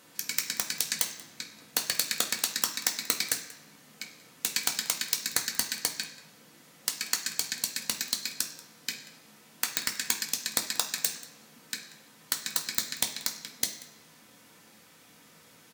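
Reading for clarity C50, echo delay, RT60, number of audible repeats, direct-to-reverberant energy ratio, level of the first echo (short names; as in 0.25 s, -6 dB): 9.0 dB, 0.185 s, 1.0 s, 1, 1.0 dB, -19.5 dB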